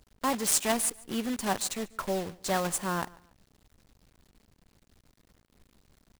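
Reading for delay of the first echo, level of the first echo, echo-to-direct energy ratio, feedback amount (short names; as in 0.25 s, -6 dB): 0.143 s, -23.0 dB, -22.5 dB, 31%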